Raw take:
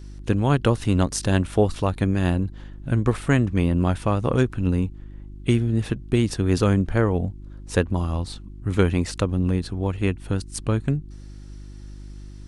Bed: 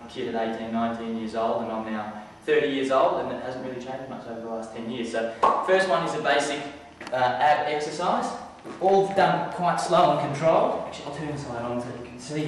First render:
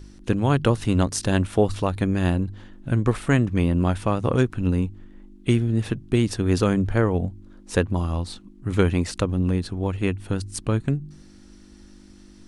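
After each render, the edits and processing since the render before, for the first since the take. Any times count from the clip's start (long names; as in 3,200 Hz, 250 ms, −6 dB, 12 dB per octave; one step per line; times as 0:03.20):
hum removal 50 Hz, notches 3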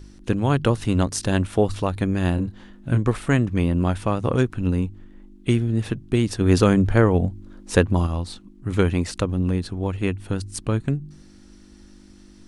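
0:02.35–0:02.98: double-tracking delay 25 ms −5.5 dB
0:06.41–0:08.07: clip gain +4 dB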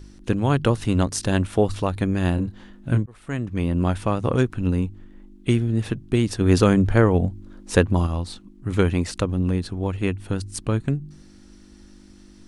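0:03.06–0:03.84: fade in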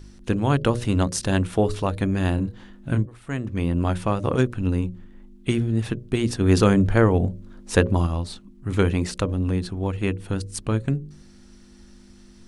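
mains-hum notches 60/120/180/240/300/360/420/480/540/600 Hz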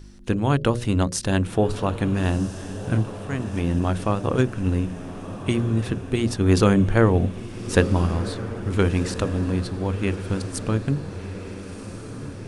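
feedback delay with all-pass diffusion 1,382 ms, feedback 60%, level −12 dB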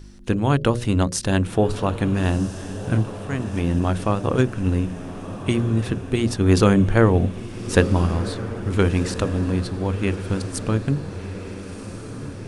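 level +1.5 dB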